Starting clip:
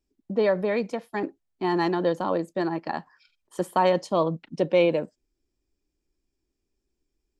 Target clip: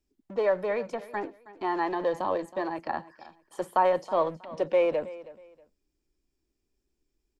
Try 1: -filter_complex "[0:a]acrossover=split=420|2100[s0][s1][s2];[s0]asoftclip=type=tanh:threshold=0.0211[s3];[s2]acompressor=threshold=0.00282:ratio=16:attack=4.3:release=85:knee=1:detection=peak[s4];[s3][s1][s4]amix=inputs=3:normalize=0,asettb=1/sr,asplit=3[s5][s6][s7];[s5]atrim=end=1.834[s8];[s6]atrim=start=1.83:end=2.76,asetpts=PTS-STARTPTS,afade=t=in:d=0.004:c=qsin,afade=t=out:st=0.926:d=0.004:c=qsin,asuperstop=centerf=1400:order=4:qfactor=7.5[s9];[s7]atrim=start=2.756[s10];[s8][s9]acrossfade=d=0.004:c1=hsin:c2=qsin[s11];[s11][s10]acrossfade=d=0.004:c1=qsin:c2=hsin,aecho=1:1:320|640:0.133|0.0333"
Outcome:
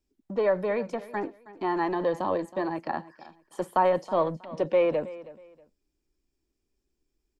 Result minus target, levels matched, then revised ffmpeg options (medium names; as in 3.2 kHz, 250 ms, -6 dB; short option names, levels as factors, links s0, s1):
saturation: distortion -4 dB
-filter_complex "[0:a]acrossover=split=420|2100[s0][s1][s2];[s0]asoftclip=type=tanh:threshold=0.0075[s3];[s2]acompressor=threshold=0.00282:ratio=16:attack=4.3:release=85:knee=1:detection=peak[s4];[s3][s1][s4]amix=inputs=3:normalize=0,asettb=1/sr,asplit=3[s5][s6][s7];[s5]atrim=end=1.834[s8];[s6]atrim=start=1.83:end=2.76,asetpts=PTS-STARTPTS,afade=t=in:d=0.004:c=qsin,afade=t=out:st=0.926:d=0.004:c=qsin,asuperstop=centerf=1400:order=4:qfactor=7.5[s9];[s7]atrim=start=2.756[s10];[s8][s9]acrossfade=d=0.004:c1=hsin:c2=qsin[s11];[s11][s10]acrossfade=d=0.004:c1=qsin:c2=hsin,aecho=1:1:320|640:0.133|0.0333"